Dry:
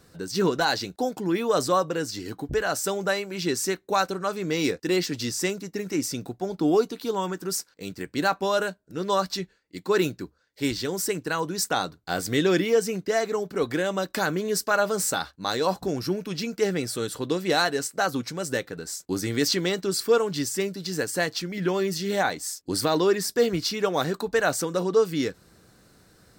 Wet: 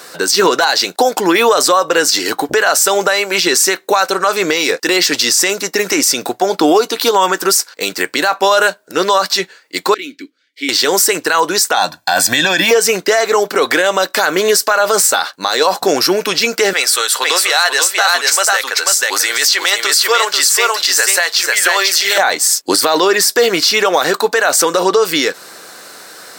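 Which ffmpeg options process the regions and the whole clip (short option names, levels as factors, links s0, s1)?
-filter_complex "[0:a]asettb=1/sr,asplit=3[s0][s1][s2];[s0]atrim=end=9.944[s3];[s1]atrim=start=9.94:end=10.69,asetpts=PTS-STARTPTS,afade=t=in:d=0.004:c=qsin,afade=t=out:st=0.746:d=0.004:c=qsin,aemphasis=mode=production:type=50kf,acompressor=threshold=0.0316:ratio=2:attack=3.2:release=140:knee=1:detection=peak,asplit=3[s4][s5][s6];[s4]bandpass=f=270:t=q:w=8,volume=1[s7];[s5]bandpass=f=2290:t=q:w=8,volume=0.501[s8];[s6]bandpass=f=3010:t=q:w=8,volume=0.355[s9];[s7][s8][s9]amix=inputs=3:normalize=0[s10];[s2]atrim=start=10.686[s11];[s3][s10]acrossfade=d=0.004:c1=hsin:c2=qsin[s12];[s12][s11]acrossfade=d=0.004:c1=qsin:c2=hsin,asettb=1/sr,asplit=3[s13][s14][s15];[s13]atrim=end=11.774[s16];[s14]atrim=start=11.77:end=12.71,asetpts=PTS-STARTPTS,afade=t=in:d=0.004:c=qsin,afade=t=out:st=0.936:d=0.004:c=qsin,highpass=44,lowshelf=f=150:g=9,aecho=1:1:1.2:0.93,atrim=end_sample=41454[s17];[s15]atrim=start=12.706[s18];[s16][s17]acrossfade=d=0.004:c1=hsin:c2=qsin[s19];[s19][s18]acrossfade=d=0.004:c1=qsin:c2=hsin,asettb=1/sr,asplit=3[s20][s21][s22];[s20]atrim=end=16.734[s23];[s21]atrim=start=16.73:end=22.18,asetpts=PTS-STARTPTS,afade=t=in:d=0.004:c=qsin,afade=t=out:st=5.446:d=0.004:c=qsin,highpass=840,aecho=1:1:491:0.596,atrim=end_sample=240345[s24];[s22]atrim=start=22.176[s25];[s23][s24]acrossfade=d=0.004:c1=hsin:c2=qsin[s26];[s26][s25]acrossfade=d=0.004:c1=qsin:c2=hsin,highpass=620,acompressor=threshold=0.0178:ratio=1.5,alimiter=level_in=21.1:limit=0.891:release=50:level=0:latency=1,volume=0.891"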